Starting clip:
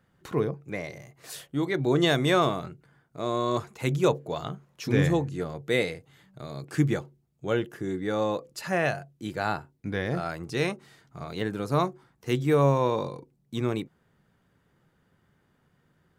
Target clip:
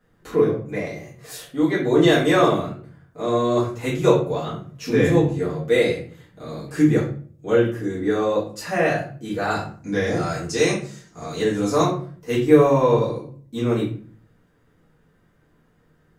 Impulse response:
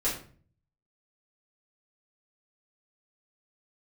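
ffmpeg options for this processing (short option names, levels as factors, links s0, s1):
-filter_complex "[0:a]asettb=1/sr,asplit=3[s0][s1][s2];[s0]atrim=end=9.504[s3];[s1]atrim=start=9.5:end=11.83,asetpts=PTS-STARTPTS,afade=t=in:d=0.004:c=qsin,afade=t=out:st=2.326:d=0.004:c=qsin,equalizer=f=6700:w=1.3:g=14.5[s4];[s2]atrim=start=11.826[s5];[s3][s4]acrossfade=d=0.004:c1=hsin:c2=qsin[s6];[s6][s5]acrossfade=d=0.004:c1=qsin:c2=hsin[s7];[1:a]atrim=start_sample=2205[s8];[s7][s8]afir=irnorm=-1:irlink=0,volume=0.75"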